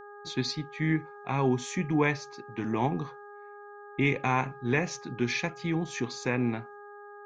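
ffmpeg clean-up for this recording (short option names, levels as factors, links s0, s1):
-af "bandreject=f=410.5:t=h:w=4,bandreject=f=821:t=h:w=4,bandreject=f=1231.5:t=h:w=4,bandreject=f=1642:t=h:w=4"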